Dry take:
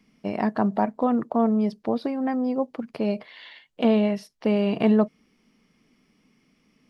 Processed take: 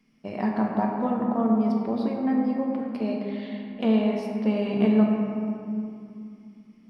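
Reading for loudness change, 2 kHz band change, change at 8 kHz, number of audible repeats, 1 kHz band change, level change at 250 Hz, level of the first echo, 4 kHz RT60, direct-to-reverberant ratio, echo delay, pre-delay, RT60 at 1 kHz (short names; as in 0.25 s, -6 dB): -1.0 dB, -2.0 dB, n/a, none, -2.0 dB, +0.5 dB, none, 1.4 s, -1.0 dB, none, 5 ms, 2.6 s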